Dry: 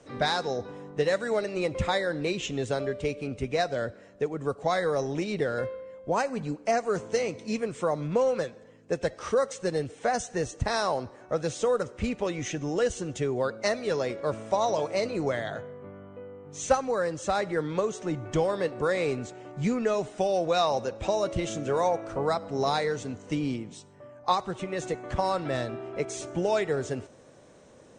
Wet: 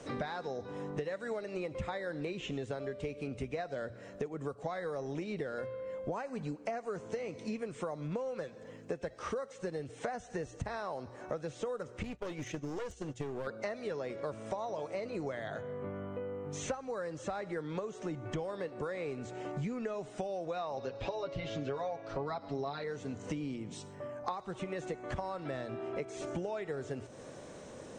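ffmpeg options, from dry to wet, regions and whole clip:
-filter_complex "[0:a]asettb=1/sr,asplit=3[s0][s1][s2];[s0]atrim=end=12.034[s3];[s1]atrim=start=12.03:end=13.47,asetpts=PTS-STARTPTS,afade=t=in:d=0.004:c=qsin,afade=t=out:st=1.436:d=0.004:c=qsin,agate=range=0.0224:threshold=0.0398:ratio=3:release=100:detection=peak,acompressor=threshold=0.0316:ratio=3:attack=3.2:release=140:knee=1:detection=peak,aeval=exprs='clip(val(0),-1,0.0126)':c=same[s4];[s2]atrim=start=13.466[s5];[s3][s4]acrossfade=d=0.004:c1=hsin:c2=qsin[s6];[s6][s5]acrossfade=d=0.004:c1=qsin:c2=hsin,asettb=1/sr,asplit=3[s7][s8][s9];[s7]atrim=end=20.774[s10];[s8]atrim=start=20.77:end=22.84,asetpts=PTS-STARTPTS,afade=t=in:d=0.004:c=qsin,afade=t=out:st=2.066:d=0.004:c=qsin,lowpass=f=4500:t=q:w=2.5,aecho=1:1:7.2:0.89,atrim=end_sample=91287[s11];[s9]atrim=start=22.836[s12];[s10][s11]acrossfade=d=0.004:c1=hsin:c2=qsin[s13];[s13][s12]acrossfade=d=0.004:c1=qsin:c2=hsin,acrossover=split=3000[s14][s15];[s15]acompressor=threshold=0.00355:ratio=4:attack=1:release=60[s16];[s14][s16]amix=inputs=2:normalize=0,bandreject=f=60:t=h:w=6,bandreject=f=120:t=h:w=6,acompressor=threshold=0.00891:ratio=8,volume=1.88"

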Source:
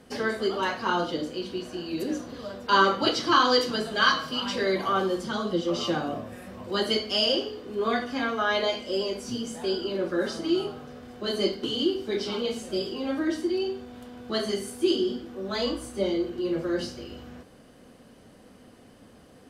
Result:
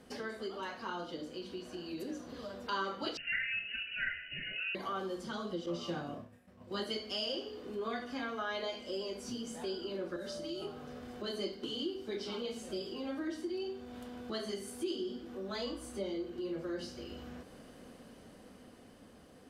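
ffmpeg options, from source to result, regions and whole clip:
-filter_complex "[0:a]asettb=1/sr,asplit=3[s0][s1][s2];[s0]atrim=end=3.174[s3];[s1]atrim=start=3.17:end=4.75,asetpts=PTS-STARTPTS,afade=t=in:d=0.004:c=qsin,afade=t=out:st=1.576:d=0.004:c=qsin,lowpass=f=2600:t=q:w=0.5098,lowpass=f=2600:t=q:w=0.6013,lowpass=f=2600:t=q:w=0.9,lowpass=f=2600:t=q:w=2.563,afreqshift=-3100,asuperstop=centerf=1000:order=12:qfactor=1.4,aecho=1:1:7.2:0.31,atrim=end_sample=69678[s4];[s2]atrim=start=4.746[s5];[s3][s4]acrossfade=d=0.004:c1=hsin:c2=qsin[s6];[s6][s5]acrossfade=d=0.004:c1=qsin:c2=hsin,asettb=1/sr,asplit=3[s7][s8][s9];[s7]atrim=end=5.664[s10];[s8]atrim=start=5.66:end=6.84,asetpts=PTS-STARTPTS,afade=t=in:d=0.004:c=qsin,afade=t=out:st=1.176:d=0.004:c=qsin,equalizer=f=130:t=o:w=0.74:g=10,agate=range=0.0224:threshold=0.0447:ratio=3:release=100:detection=peak,asplit=2[s11][s12];[s12]adelay=29,volume=0.447[s13];[s11][s13]amix=inputs=2:normalize=0,atrim=end_sample=52038[s14];[s9]atrim=start=6.836[s15];[s10][s14]acrossfade=d=0.004:c1=hsin:c2=qsin[s16];[s16][s15]acrossfade=d=0.004:c1=qsin:c2=hsin,asettb=1/sr,asplit=3[s17][s18][s19];[s17]atrim=end=10.164[s20];[s18]atrim=start=10.16:end=10.62,asetpts=PTS-STARTPTS,afade=t=in:d=0.004:c=qsin,afade=t=out:st=0.456:d=0.004:c=qsin,aeval=exprs='val(0)+0.0447*sin(2*PI*590*n/s)':c=same,acrossover=split=190|3000[s21][s22][s23];[s22]acompressor=threshold=0.0112:ratio=2:attack=3.2:release=140:knee=2.83:detection=peak[s24];[s21][s24][s23]amix=inputs=3:normalize=0[s25];[s19]atrim=start=10.616[s26];[s20][s25]acrossfade=d=0.004:c1=hsin:c2=qsin[s27];[s27][s26]acrossfade=d=0.004:c1=qsin:c2=hsin,dynaudnorm=f=360:g=11:m=1.78,equalizer=f=120:w=5.9:g=-6.5,acompressor=threshold=0.00891:ratio=2,volume=0.596"

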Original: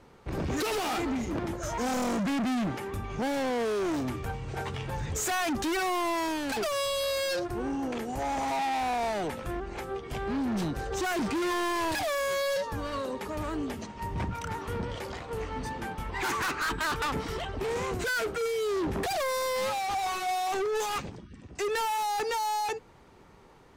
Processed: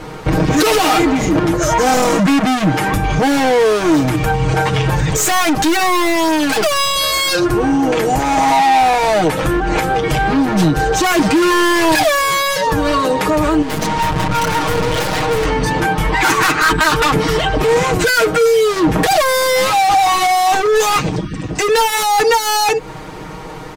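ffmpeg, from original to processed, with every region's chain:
-filter_complex "[0:a]asettb=1/sr,asplit=3[s0][s1][s2];[s0]atrim=end=5.074[s3];[s1]atrim=start=5.07:end=6.96,asetpts=PTS-STARTPTS,afade=t=in:d=0.004:c=qsin,afade=t=out:st=1.886:d=0.004:c=qsin,highpass=43,aeval=exprs='clip(val(0),-1,0.0237)':c=same[s4];[s2]atrim=start=6.956[s5];[s3][s4]acrossfade=d=0.004:c1=hsin:c2=qsin[s6];[s6][s5]acrossfade=d=0.004:c1=qsin:c2=hsin,asettb=1/sr,asplit=3[s7][s8][s9];[s7]atrim=end=13.624[s10];[s8]atrim=start=13.62:end=15.46,asetpts=PTS-STARTPTS,afade=t=in:d=0.004:c=qsin,afade=t=out:st=1.836:d=0.004:c=qsin,acontrast=50,aeval=exprs='(tanh(112*val(0)+0.25)-tanh(0.25))/112':c=same[s11];[s9]atrim=start=15.456[s12];[s10][s11]acrossfade=d=0.004:c1=hsin:c2=qsin[s13];[s13][s12]acrossfade=d=0.004:c1=qsin:c2=hsin,aecho=1:1:6.4:0.85,acompressor=threshold=0.02:ratio=6,alimiter=level_in=29.9:limit=0.891:release=50:level=0:latency=1,volume=0.501"

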